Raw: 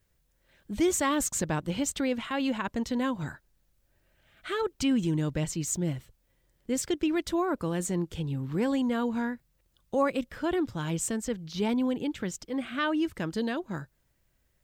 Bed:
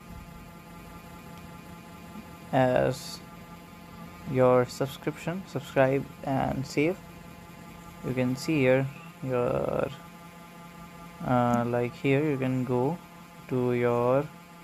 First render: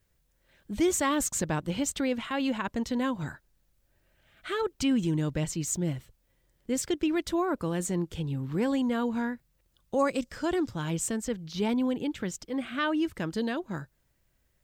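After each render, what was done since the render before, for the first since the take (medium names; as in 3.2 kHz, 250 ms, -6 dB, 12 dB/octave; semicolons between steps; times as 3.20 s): 9.99–10.69 s: high-order bell 6.2 kHz +9 dB 1.1 oct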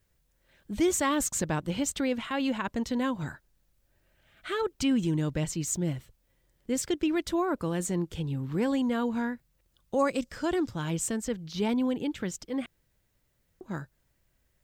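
12.66–13.61 s: room tone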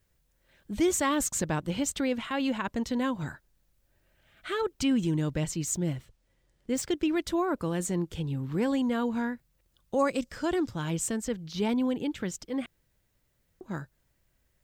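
5.94–6.95 s: median filter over 3 samples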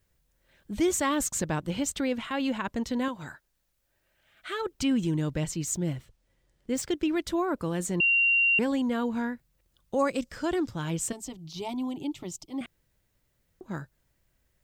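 3.08–4.66 s: bass shelf 370 Hz -9.5 dB; 8.00–8.59 s: bleep 2.76 kHz -19.5 dBFS; 11.12–12.61 s: static phaser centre 320 Hz, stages 8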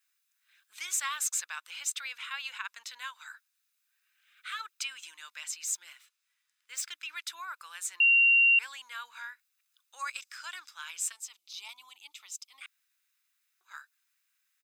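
high-pass 1.4 kHz 24 dB/octave; comb 0.8 ms, depth 33%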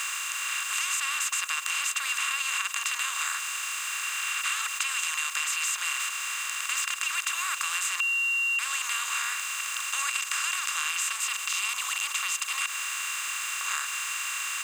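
spectral levelling over time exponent 0.2; compression, threshold -25 dBFS, peak gain reduction 6.5 dB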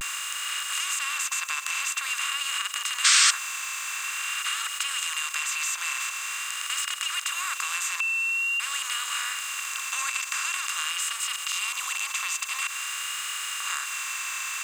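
vibrato 0.47 Hz 50 cents; 3.04–3.31 s: painted sound noise 1.1–8.9 kHz -18 dBFS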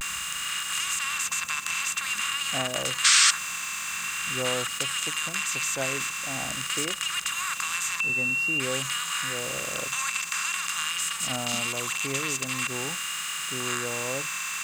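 add bed -10 dB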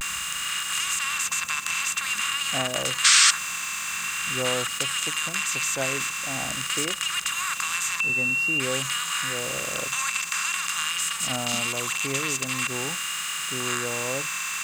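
trim +2 dB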